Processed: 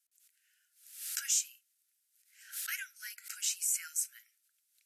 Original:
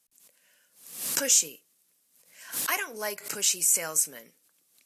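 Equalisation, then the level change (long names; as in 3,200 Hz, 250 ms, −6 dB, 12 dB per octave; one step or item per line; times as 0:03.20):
linear-phase brick-wall high-pass 1,300 Hz
−9.0 dB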